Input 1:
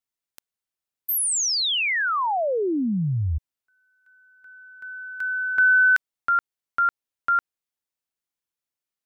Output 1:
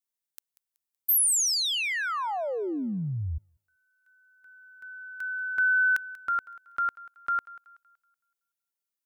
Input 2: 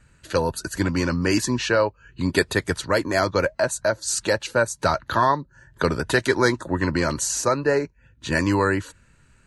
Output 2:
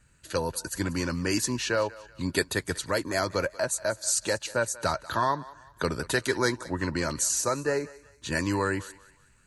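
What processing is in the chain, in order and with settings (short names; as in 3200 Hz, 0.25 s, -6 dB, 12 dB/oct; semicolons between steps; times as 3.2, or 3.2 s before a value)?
high shelf 6000 Hz +10 dB; on a send: thinning echo 0.188 s, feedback 39%, high-pass 560 Hz, level -18 dB; on the sum: gain -7 dB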